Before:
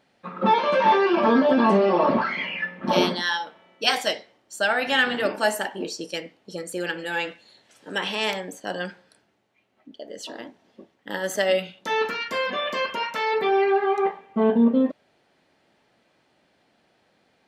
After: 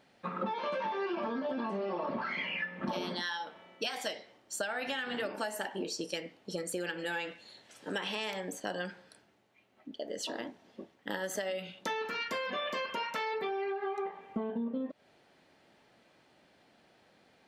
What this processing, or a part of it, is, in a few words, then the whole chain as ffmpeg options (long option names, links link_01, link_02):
serial compression, leveller first: -af "acompressor=threshold=-21dB:ratio=6,acompressor=threshold=-33dB:ratio=6"